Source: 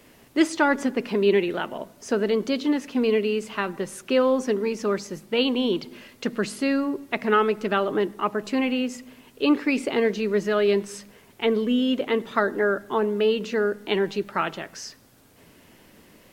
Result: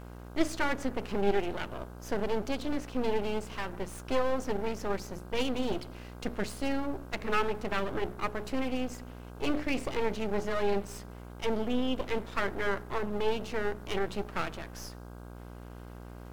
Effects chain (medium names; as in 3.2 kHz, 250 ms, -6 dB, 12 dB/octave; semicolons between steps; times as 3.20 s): hum notches 60/120/180/240/300/360/420 Hz; half-wave rectifier; mains buzz 60 Hz, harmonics 27, -42 dBFS -5 dB/octave; trim -3.5 dB